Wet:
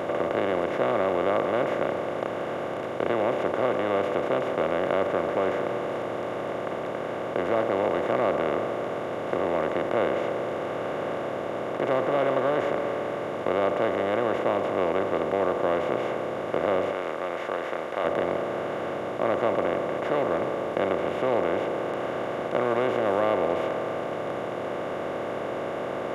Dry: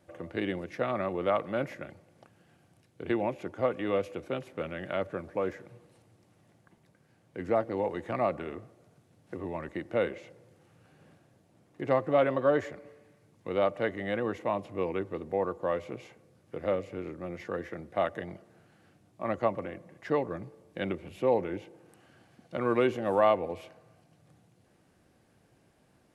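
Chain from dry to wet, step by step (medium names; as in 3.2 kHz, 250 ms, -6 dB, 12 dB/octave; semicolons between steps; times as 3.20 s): spectral levelling over time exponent 0.2; 16.92–18.05 s: bass shelf 450 Hz -11 dB; trim -5.5 dB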